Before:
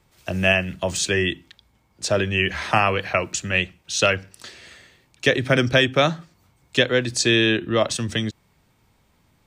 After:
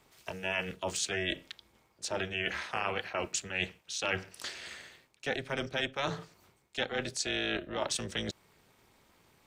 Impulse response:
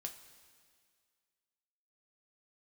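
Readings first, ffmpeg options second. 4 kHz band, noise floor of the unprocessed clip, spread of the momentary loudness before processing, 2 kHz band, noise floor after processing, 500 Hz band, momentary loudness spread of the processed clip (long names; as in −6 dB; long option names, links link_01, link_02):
−12.0 dB, −63 dBFS, 10 LU, −13.0 dB, −70 dBFS, −14.5 dB, 11 LU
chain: -af "areverse,acompressor=threshold=-30dB:ratio=6,areverse,tremolo=f=280:d=0.857,lowshelf=frequency=260:gain=-9.5,volume=4dB"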